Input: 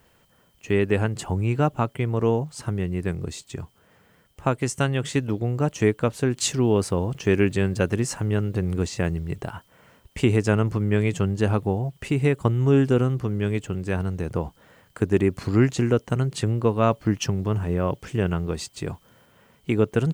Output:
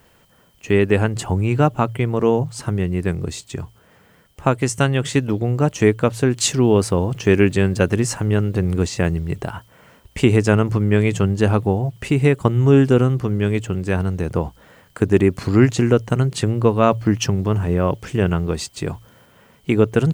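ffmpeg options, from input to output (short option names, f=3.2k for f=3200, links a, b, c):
-af "bandreject=f=56.59:t=h:w=4,bandreject=f=113.18:t=h:w=4,volume=5.5dB"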